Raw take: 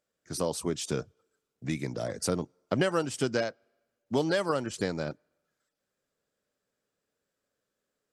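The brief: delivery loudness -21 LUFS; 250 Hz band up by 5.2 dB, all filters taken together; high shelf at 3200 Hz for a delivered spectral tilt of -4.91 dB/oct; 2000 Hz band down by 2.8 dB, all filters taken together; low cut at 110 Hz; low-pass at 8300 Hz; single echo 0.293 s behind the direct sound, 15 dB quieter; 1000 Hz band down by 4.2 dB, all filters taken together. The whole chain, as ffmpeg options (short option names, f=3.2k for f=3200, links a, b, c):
-af "highpass=110,lowpass=8.3k,equalizer=f=250:t=o:g=7.5,equalizer=f=1k:t=o:g=-6,equalizer=f=2k:t=o:g=-3,highshelf=f=3.2k:g=5.5,aecho=1:1:293:0.178,volume=8dB"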